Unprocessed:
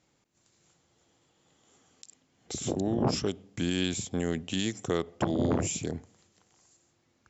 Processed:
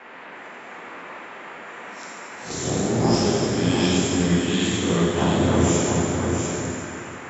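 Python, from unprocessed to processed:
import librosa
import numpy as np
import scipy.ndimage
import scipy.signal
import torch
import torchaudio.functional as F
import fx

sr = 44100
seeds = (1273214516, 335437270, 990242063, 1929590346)

p1 = fx.spec_swells(x, sr, rise_s=0.4)
p2 = fx.dmg_noise_band(p1, sr, seeds[0], low_hz=210.0, high_hz=2200.0, level_db=-46.0)
p3 = fx.wow_flutter(p2, sr, seeds[1], rate_hz=2.1, depth_cents=24.0)
p4 = p3 + fx.echo_single(p3, sr, ms=695, db=-5.0, dry=0)
y = fx.rev_plate(p4, sr, seeds[2], rt60_s=2.7, hf_ratio=0.85, predelay_ms=0, drr_db=-6.0)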